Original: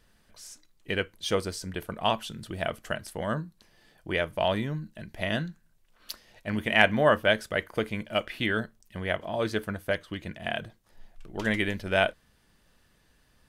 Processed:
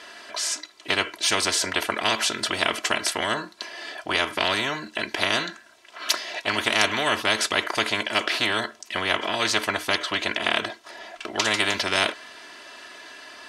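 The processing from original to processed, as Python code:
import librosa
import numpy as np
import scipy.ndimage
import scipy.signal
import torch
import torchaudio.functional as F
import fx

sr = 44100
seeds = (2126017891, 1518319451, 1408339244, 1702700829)

y = fx.bandpass_edges(x, sr, low_hz=520.0, high_hz=5700.0)
y = y + 0.79 * np.pad(y, (int(3.0 * sr / 1000.0), 0))[:len(y)]
y = fx.spectral_comp(y, sr, ratio=4.0)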